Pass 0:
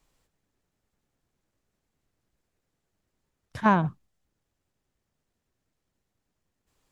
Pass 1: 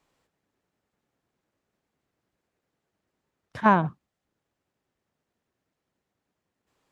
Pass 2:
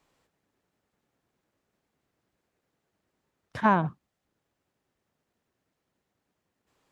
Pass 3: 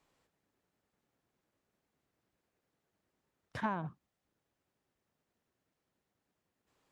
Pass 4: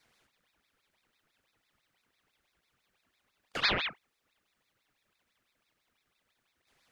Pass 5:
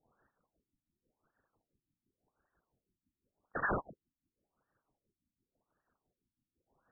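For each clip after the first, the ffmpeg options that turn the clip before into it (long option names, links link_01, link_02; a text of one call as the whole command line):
ffmpeg -i in.wav -af "highpass=frequency=220:poles=1,highshelf=frequency=4400:gain=-10.5,volume=3.5dB" out.wav
ffmpeg -i in.wav -af "alimiter=limit=-10dB:level=0:latency=1:release=413,volume=1.5dB" out.wav
ffmpeg -i in.wav -af "acompressor=threshold=-28dB:ratio=4,volume=-4.5dB" out.wav
ffmpeg -i in.wav -af "afreqshift=370,aeval=exprs='val(0)*sin(2*PI*1900*n/s+1900*0.65/6*sin(2*PI*6*n/s))':channel_layout=same,volume=9dB" out.wav
ffmpeg -i in.wav -af "afftfilt=real='re*lt(b*sr/1024,310*pow(1900/310,0.5+0.5*sin(2*PI*0.9*pts/sr)))':imag='im*lt(b*sr/1024,310*pow(1900/310,0.5+0.5*sin(2*PI*0.9*pts/sr)))':win_size=1024:overlap=0.75" out.wav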